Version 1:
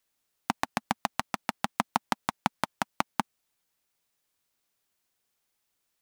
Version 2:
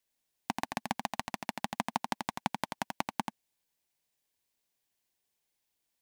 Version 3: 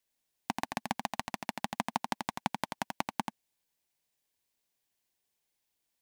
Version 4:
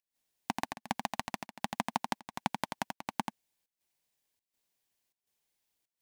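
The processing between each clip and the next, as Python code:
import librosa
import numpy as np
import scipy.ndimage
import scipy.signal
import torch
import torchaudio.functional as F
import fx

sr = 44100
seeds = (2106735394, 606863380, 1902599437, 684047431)

y1 = fx.peak_eq(x, sr, hz=1300.0, db=-11.0, octaves=0.26)
y1 = y1 + 10.0 ** (-5.5 / 20.0) * np.pad(y1, (int(85 * sr / 1000.0), 0))[:len(y1)]
y1 = y1 * librosa.db_to_amplitude(-4.5)
y2 = y1
y3 = fx.volume_shaper(y2, sr, bpm=82, per_beat=1, depth_db=-16, release_ms=146.0, shape='slow start')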